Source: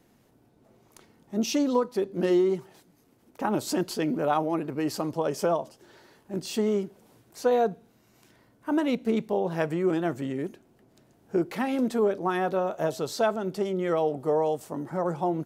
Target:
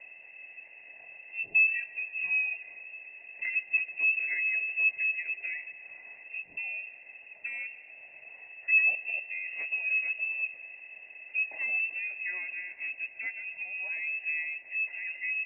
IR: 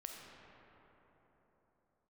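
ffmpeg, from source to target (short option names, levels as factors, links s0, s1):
-filter_complex "[0:a]aeval=exprs='val(0)+0.5*0.015*sgn(val(0))':c=same,asplit=3[s0][s1][s2];[s0]bandpass=f=300:t=q:w=8,volume=1[s3];[s1]bandpass=f=870:t=q:w=8,volume=0.501[s4];[s2]bandpass=f=2240:t=q:w=8,volume=0.355[s5];[s3][s4][s5]amix=inputs=3:normalize=0,asplit=2[s6][s7];[1:a]atrim=start_sample=2205,adelay=148[s8];[s7][s8]afir=irnorm=-1:irlink=0,volume=0.237[s9];[s6][s9]amix=inputs=2:normalize=0,lowpass=f=2500:t=q:w=0.5098,lowpass=f=2500:t=q:w=0.6013,lowpass=f=2500:t=q:w=0.9,lowpass=f=2500:t=q:w=2.563,afreqshift=-2900,volume=1.41"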